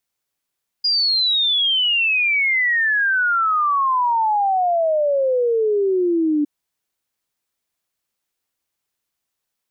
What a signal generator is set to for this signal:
exponential sine sweep 4,900 Hz → 290 Hz 5.61 s −15 dBFS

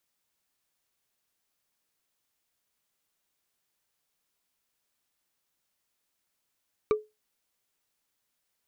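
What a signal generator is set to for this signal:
struck wood, lowest mode 427 Hz, decay 0.22 s, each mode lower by 7 dB, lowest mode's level −17 dB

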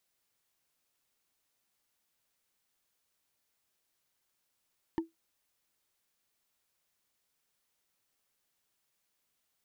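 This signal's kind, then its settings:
struck wood, lowest mode 328 Hz, decay 0.16 s, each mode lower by 7 dB, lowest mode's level −24 dB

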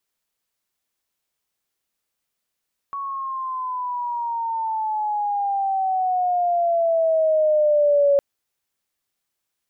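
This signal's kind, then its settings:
pitch glide with a swell sine, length 5.26 s, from 1,120 Hz, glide −12 semitones, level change +13 dB, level −13 dB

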